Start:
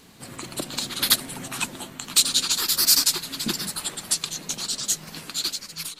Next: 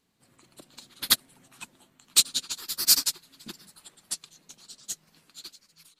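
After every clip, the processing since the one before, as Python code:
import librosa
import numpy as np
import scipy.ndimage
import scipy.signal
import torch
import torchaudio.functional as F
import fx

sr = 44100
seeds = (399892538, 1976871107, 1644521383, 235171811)

y = fx.upward_expand(x, sr, threshold_db=-29.0, expansion=2.5)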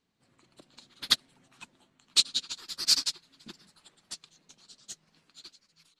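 y = scipy.signal.sosfilt(scipy.signal.butter(2, 6300.0, 'lowpass', fs=sr, output='sos'), x)
y = fx.dynamic_eq(y, sr, hz=4000.0, q=0.91, threshold_db=-35.0, ratio=4.0, max_db=5)
y = y * librosa.db_to_amplitude(-4.5)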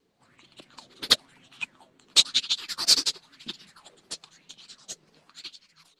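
y = fx.vibrato(x, sr, rate_hz=6.7, depth_cents=83.0)
y = fx.bell_lfo(y, sr, hz=0.99, low_hz=380.0, high_hz=3400.0, db=13)
y = y * librosa.db_to_amplitude(4.0)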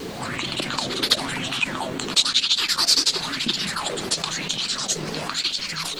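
y = fx.env_flatten(x, sr, amount_pct=70)
y = y * librosa.db_to_amplitude(-1.0)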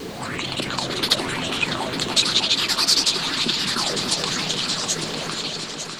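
y = fx.fade_out_tail(x, sr, length_s=1.07)
y = fx.echo_opening(y, sr, ms=300, hz=750, octaves=2, feedback_pct=70, wet_db=-3)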